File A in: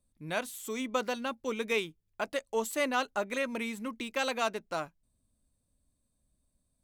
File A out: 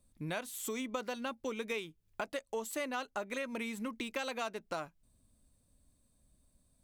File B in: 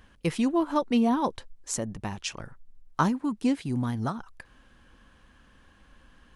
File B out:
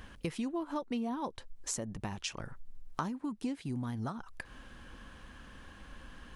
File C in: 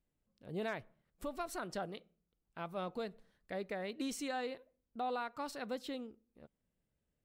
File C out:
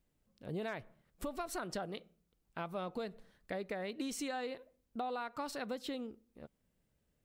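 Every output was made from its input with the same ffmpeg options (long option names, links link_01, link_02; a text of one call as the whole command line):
ffmpeg -i in.wav -af "acompressor=threshold=-43dB:ratio=4,volume=6dB" out.wav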